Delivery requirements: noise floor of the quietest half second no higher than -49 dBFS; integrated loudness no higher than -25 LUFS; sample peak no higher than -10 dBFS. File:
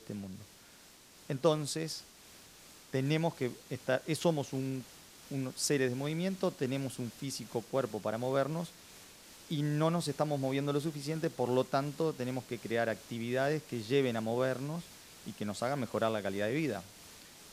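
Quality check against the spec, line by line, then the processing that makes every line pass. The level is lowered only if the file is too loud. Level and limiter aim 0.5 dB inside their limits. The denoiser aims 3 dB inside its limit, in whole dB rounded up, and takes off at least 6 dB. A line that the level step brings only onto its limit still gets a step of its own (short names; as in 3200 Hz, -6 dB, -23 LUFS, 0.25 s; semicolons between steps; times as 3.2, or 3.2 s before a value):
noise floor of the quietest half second -58 dBFS: OK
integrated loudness -34.5 LUFS: OK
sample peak -14.5 dBFS: OK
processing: none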